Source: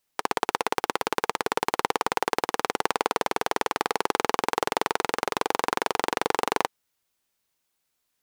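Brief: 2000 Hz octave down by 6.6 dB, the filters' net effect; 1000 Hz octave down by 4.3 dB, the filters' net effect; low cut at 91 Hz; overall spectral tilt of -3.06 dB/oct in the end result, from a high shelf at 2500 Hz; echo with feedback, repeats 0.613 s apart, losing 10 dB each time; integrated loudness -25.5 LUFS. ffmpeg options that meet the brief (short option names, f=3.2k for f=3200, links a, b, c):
-af "highpass=91,equalizer=f=1k:t=o:g=-3.5,equalizer=f=2k:t=o:g=-5.5,highshelf=f=2.5k:g=-4,aecho=1:1:613|1226|1839|2452:0.316|0.101|0.0324|0.0104,volume=5dB"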